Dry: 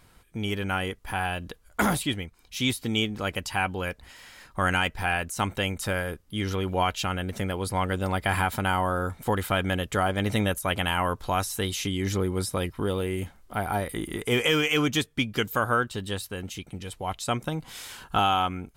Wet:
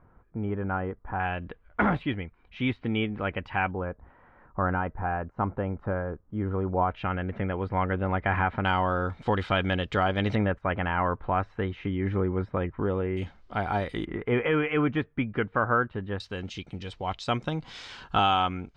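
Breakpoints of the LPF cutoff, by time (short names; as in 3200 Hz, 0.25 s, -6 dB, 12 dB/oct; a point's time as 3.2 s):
LPF 24 dB/oct
1400 Hz
from 1.2 s 2400 Hz
from 3.71 s 1300 Hz
from 6.91 s 2200 Hz
from 8.65 s 4400 Hz
from 10.35 s 2000 Hz
from 13.17 s 4900 Hz
from 14.05 s 2000 Hz
from 16.2 s 5100 Hz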